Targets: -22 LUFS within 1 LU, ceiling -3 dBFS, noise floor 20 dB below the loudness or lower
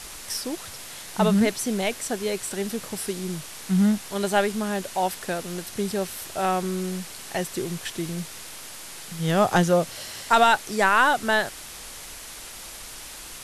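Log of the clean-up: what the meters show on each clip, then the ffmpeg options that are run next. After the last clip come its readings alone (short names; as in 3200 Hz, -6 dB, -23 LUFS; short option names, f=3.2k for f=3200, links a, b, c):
noise floor -40 dBFS; noise floor target -45 dBFS; loudness -24.5 LUFS; peak -6.0 dBFS; loudness target -22.0 LUFS
-> -af "afftdn=nr=6:nf=-40"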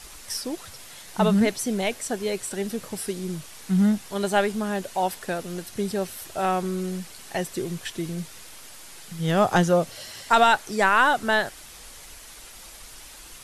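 noise floor -45 dBFS; loudness -24.5 LUFS; peak -6.0 dBFS; loudness target -22.0 LUFS
-> -af "volume=2.5dB"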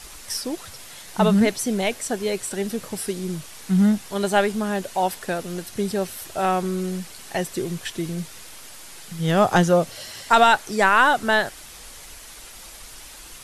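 loudness -22.0 LUFS; peak -3.5 dBFS; noise floor -42 dBFS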